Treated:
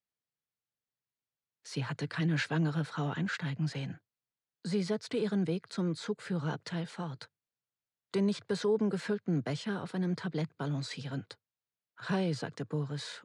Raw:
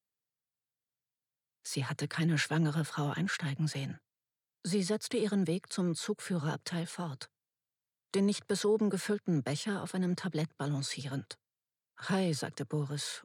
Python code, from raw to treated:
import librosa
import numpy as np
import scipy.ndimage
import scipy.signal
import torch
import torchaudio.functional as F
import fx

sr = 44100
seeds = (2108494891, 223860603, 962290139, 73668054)

y = fx.air_absorb(x, sr, metres=96.0)